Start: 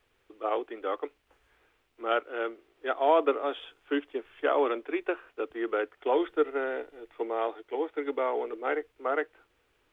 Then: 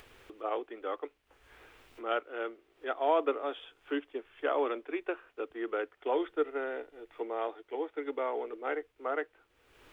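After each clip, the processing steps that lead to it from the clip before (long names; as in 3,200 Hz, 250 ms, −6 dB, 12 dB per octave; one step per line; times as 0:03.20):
upward compression, threshold −37 dBFS
level −4.5 dB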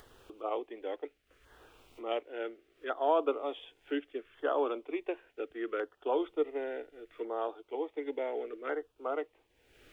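auto-filter notch saw down 0.69 Hz 780–2,500 Hz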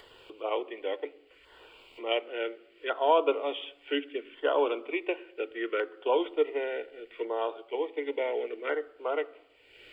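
convolution reverb RT60 0.85 s, pre-delay 3 ms, DRR 17.5 dB
level −1.5 dB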